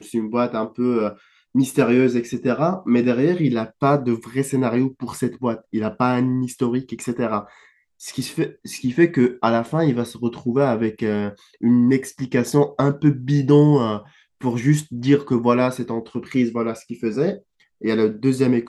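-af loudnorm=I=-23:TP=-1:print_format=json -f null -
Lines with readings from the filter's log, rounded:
"input_i" : "-20.8",
"input_tp" : "-2.5",
"input_lra" : "3.7",
"input_thresh" : "-31.1",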